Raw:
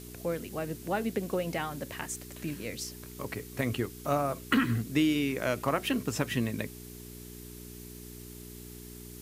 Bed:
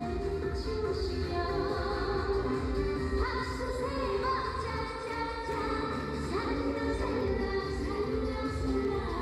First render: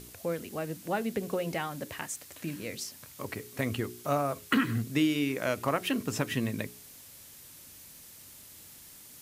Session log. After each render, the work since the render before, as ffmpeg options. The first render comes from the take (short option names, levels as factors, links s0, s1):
-af "bandreject=f=60:t=h:w=4,bandreject=f=120:t=h:w=4,bandreject=f=180:t=h:w=4,bandreject=f=240:t=h:w=4,bandreject=f=300:t=h:w=4,bandreject=f=360:t=h:w=4,bandreject=f=420:t=h:w=4"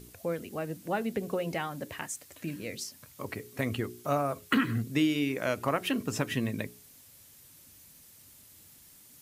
-af "afftdn=nr=6:nf=-51"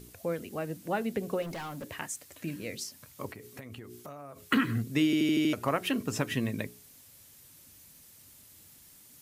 -filter_complex "[0:a]asettb=1/sr,asplit=3[s0][s1][s2];[s0]atrim=end=1.424[s3];[s1]atrim=start=1.42:end=1.84,asetpts=PTS-STARTPTS,afade=t=in:d=0.004:c=qsin,afade=t=out:st=0.416:d=0.004:c=qsin,asoftclip=type=hard:threshold=0.0158[s4];[s2]atrim=start=1.836[s5];[s3][s4]acrossfade=d=0.004:c1=hsin:c2=qsin[s6];[s6][s5]acrossfade=d=0.004:c1=qsin:c2=hsin,asettb=1/sr,asplit=3[s7][s8][s9];[s7]atrim=end=3.264[s10];[s8]atrim=start=3.26:end=4.47,asetpts=PTS-STARTPTS,afade=t=in:d=0.004:c=qsin,afade=t=out:st=1.206:d=0.004:c=qsin,acompressor=threshold=0.01:ratio=12:attack=3.2:release=140:knee=1:detection=peak[s11];[s9]atrim=start=4.466[s12];[s10][s11]acrossfade=d=0.004:c1=hsin:c2=qsin[s13];[s13][s12]acrossfade=d=0.004:c1=qsin:c2=hsin,asplit=7[s14][s15][s16][s17][s18][s19][s20];[s14]atrim=end=5.132[s21];[s15]atrim=start=5.048:end=5.132[s22];[s16]atrim=start=5.048:end=5.132[s23];[s17]atrim=start=5.048:end=5.132[s24];[s18]atrim=start=5.048:end=5.132[s25];[s19]atrim=start=5.048:end=5.132[s26];[s20]atrim=start=5.528[s27];[s21][s22]acrossfade=d=0.004:c1=hsin:c2=hsin[s28];[s28][s23]acrossfade=d=0.004:c1=hsin:c2=hsin[s29];[s29][s24]acrossfade=d=0.004:c1=hsin:c2=hsin[s30];[s30][s25]acrossfade=d=0.004:c1=hsin:c2=hsin[s31];[s31][s26]acrossfade=d=0.004:c1=hsin:c2=hsin[s32];[s32][s27]acrossfade=d=0.004:c1=hsin:c2=hsin"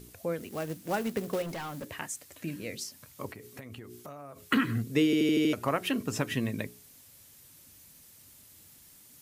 -filter_complex "[0:a]asettb=1/sr,asplit=3[s0][s1][s2];[s0]atrim=end=0.404[s3];[s1]atrim=start=0.4:end=1.85,asetpts=PTS-STARTPTS,afade=t=in:d=0.004:c=qsin,afade=t=out:st=1.446:d=0.004:c=qsin,acrusher=bits=3:mode=log:mix=0:aa=0.000001[s4];[s2]atrim=start=1.846[s5];[s3][s4]acrossfade=d=0.004:c1=hsin:c2=qsin[s6];[s6][s5]acrossfade=d=0.004:c1=qsin:c2=hsin,asettb=1/sr,asplit=3[s7][s8][s9];[s7]atrim=end=4.894[s10];[s8]atrim=start=4.89:end=5.52,asetpts=PTS-STARTPTS,afade=t=in:d=0.004:c=qsin,afade=t=out:st=0.626:d=0.004:c=qsin,equalizer=f=460:w=7.5:g=14[s11];[s9]atrim=start=5.516[s12];[s10][s11]acrossfade=d=0.004:c1=hsin:c2=qsin[s13];[s13][s12]acrossfade=d=0.004:c1=qsin:c2=hsin"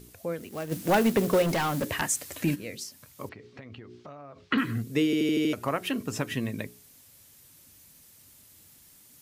-filter_complex "[0:a]asplit=3[s0][s1][s2];[s0]afade=t=out:st=0.71:d=0.02[s3];[s1]aeval=exprs='0.158*sin(PI/2*2.24*val(0)/0.158)':c=same,afade=t=in:st=0.71:d=0.02,afade=t=out:st=2.54:d=0.02[s4];[s2]afade=t=in:st=2.54:d=0.02[s5];[s3][s4][s5]amix=inputs=3:normalize=0,asettb=1/sr,asplit=3[s6][s7][s8];[s6]atrim=end=3.294[s9];[s7]atrim=start=3.29:end=4.58,asetpts=PTS-STARTPTS,afade=t=in:d=0.004:c=qsin,afade=t=out:st=1.286:d=0.004:c=qsin,lowpass=f=4800:w=0.5412,lowpass=f=4800:w=1.3066[s10];[s8]atrim=start=4.576[s11];[s9][s10]acrossfade=d=0.004:c1=hsin:c2=qsin[s12];[s12][s11]acrossfade=d=0.004:c1=qsin:c2=hsin"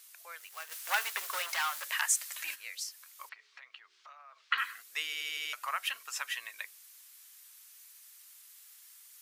-af "highpass=f=1100:w=0.5412,highpass=f=1100:w=1.3066"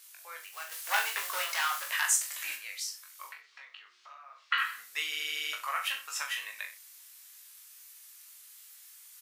-filter_complex "[0:a]asplit=2[s0][s1];[s1]adelay=38,volume=0.251[s2];[s0][s2]amix=inputs=2:normalize=0,aecho=1:1:20|42|66.2|92.82|122.1:0.631|0.398|0.251|0.158|0.1"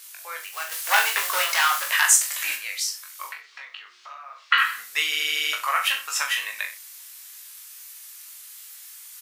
-af "volume=3.16,alimiter=limit=0.708:level=0:latency=1"